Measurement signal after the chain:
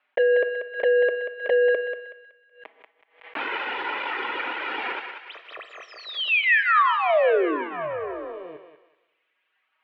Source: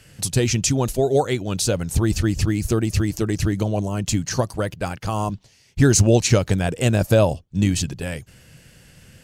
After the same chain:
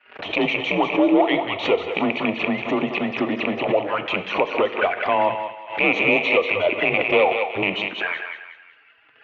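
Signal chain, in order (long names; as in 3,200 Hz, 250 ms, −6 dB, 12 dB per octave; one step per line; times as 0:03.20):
loose part that buzzes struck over −14 dBFS, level −7 dBFS
reverb reduction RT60 1.8 s
parametric band 500 Hz −8.5 dB 0.97 octaves
leveller curve on the samples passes 5
reversed playback
upward compression, threshold −28 dBFS
reversed playback
flanger swept by the level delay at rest 5.9 ms, full sweep at −9.5 dBFS
on a send: feedback echo with a high-pass in the loop 187 ms, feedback 40%, high-pass 890 Hz, level −5.5 dB
on the sum: coupled-rooms reverb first 0.76 s, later 2.1 s, from −27 dB, DRR 10.5 dB
single-sideband voice off tune −87 Hz 450–2,800 Hz
boost into a limiter +6.5 dB
background raised ahead of every attack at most 140 dB per second
level −6.5 dB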